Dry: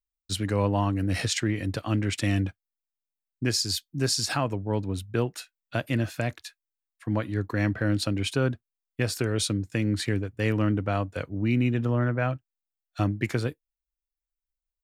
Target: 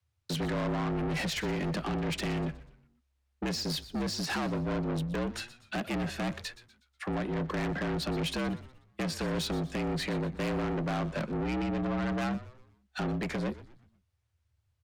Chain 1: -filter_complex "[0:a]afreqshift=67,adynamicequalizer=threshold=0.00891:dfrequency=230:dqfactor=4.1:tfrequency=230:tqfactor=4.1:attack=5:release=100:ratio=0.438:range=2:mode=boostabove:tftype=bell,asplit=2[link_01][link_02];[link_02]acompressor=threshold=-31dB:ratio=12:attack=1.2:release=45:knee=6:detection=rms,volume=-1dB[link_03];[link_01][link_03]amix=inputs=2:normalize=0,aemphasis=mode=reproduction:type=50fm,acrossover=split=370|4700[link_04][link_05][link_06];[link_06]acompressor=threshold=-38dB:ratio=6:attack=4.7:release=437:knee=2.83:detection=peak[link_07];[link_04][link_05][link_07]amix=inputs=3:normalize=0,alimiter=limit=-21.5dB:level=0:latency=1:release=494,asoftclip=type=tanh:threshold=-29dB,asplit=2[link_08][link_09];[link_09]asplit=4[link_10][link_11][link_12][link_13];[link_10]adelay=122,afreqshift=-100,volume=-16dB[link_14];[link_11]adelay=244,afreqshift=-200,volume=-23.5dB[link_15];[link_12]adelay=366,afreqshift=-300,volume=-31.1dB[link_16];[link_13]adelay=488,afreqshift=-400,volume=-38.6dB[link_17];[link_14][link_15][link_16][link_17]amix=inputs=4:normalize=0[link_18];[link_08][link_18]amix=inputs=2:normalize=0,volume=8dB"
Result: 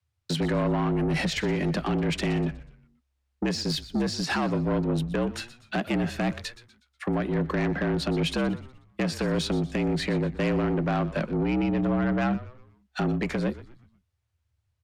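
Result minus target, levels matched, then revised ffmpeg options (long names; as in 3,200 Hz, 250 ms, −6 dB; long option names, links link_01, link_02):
downward compressor: peak gain reduction −10 dB; soft clipping: distortion −6 dB
-filter_complex "[0:a]afreqshift=67,adynamicequalizer=threshold=0.00891:dfrequency=230:dqfactor=4.1:tfrequency=230:tqfactor=4.1:attack=5:release=100:ratio=0.438:range=2:mode=boostabove:tftype=bell,asplit=2[link_01][link_02];[link_02]acompressor=threshold=-42dB:ratio=12:attack=1.2:release=45:knee=6:detection=rms,volume=-1dB[link_03];[link_01][link_03]amix=inputs=2:normalize=0,aemphasis=mode=reproduction:type=50fm,acrossover=split=370|4700[link_04][link_05][link_06];[link_06]acompressor=threshold=-38dB:ratio=6:attack=4.7:release=437:knee=2.83:detection=peak[link_07];[link_04][link_05][link_07]amix=inputs=3:normalize=0,alimiter=limit=-21.5dB:level=0:latency=1:release=494,asoftclip=type=tanh:threshold=-37.5dB,asplit=2[link_08][link_09];[link_09]asplit=4[link_10][link_11][link_12][link_13];[link_10]adelay=122,afreqshift=-100,volume=-16dB[link_14];[link_11]adelay=244,afreqshift=-200,volume=-23.5dB[link_15];[link_12]adelay=366,afreqshift=-300,volume=-31.1dB[link_16];[link_13]adelay=488,afreqshift=-400,volume=-38.6dB[link_17];[link_14][link_15][link_16][link_17]amix=inputs=4:normalize=0[link_18];[link_08][link_18]amix=inputs=2:normalize=0,volume=8dB"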